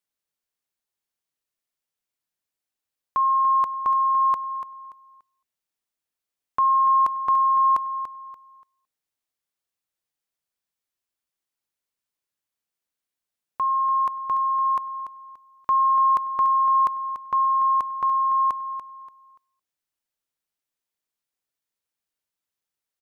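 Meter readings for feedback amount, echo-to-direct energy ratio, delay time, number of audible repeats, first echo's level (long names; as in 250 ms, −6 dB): 28%, −10.0 dB, 289 ms, 3, −10.5 dB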